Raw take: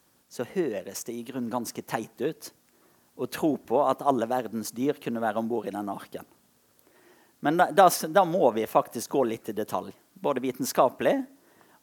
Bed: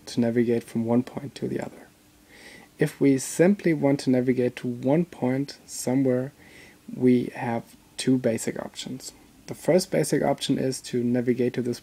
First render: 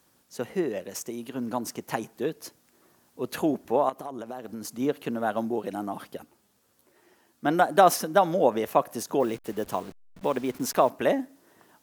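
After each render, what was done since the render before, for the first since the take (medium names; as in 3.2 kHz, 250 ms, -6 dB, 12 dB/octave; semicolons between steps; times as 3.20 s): 3.89–4.79 s: compression 10:1, threshold -32 dBFS; 6.17–7.45 s: three-phase chorus; 9.20–10.90 s: send-on-delta sampling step -43.5 dBFS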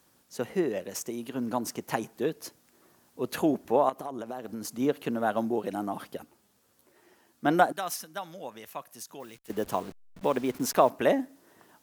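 7.72–9.50 s: amplifier tone stack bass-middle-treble 5-5-5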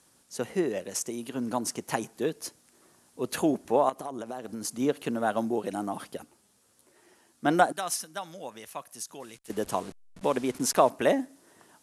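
steep low-pass 11 kHz 36 dB/octave; treble shelf 7.1 kHz +10.5 dB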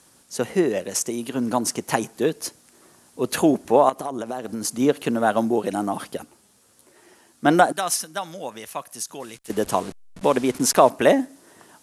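trim +7.5 dB; peak limiter -2 dBFS, peak gain reduction 2.5 dB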